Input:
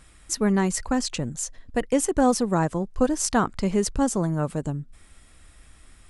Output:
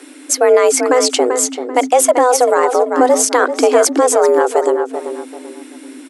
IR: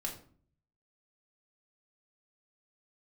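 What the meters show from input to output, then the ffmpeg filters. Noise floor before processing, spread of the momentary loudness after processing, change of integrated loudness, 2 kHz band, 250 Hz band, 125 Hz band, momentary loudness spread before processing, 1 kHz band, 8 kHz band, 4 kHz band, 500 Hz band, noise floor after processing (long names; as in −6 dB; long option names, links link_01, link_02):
−53 dBFS, 10 LU, +12.0 dB, +13.0 dB, +2.5 dB, below −25 dB, 9 LU, +14.0 dB, +13.0 dB, +12.0 dB, +16.0 dB, −36 dBFS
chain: -filter_complex "[0:a]afreqshift=250,asplit=2[link_01][link_02];[link_02]adelay=388,lowpass=frequency=3500:poles=1,volume=-10dB,asplit=2[link_03][link_04];[link_04]adelay=388,lowpass=frequency=3500:poles=1,volume=0.31,asplit=2[link_05][link_06];[link_06]adelay=388,lowpass=frequency=3500:poles=1,volume=0.31[link_07];[link_01][link_03][link_05][link_07]amix=inputs=4:normalize=0,alimiter=level_in=15dB:limit=-1dB:release=50:level=0:latency=1,volume=-1dB"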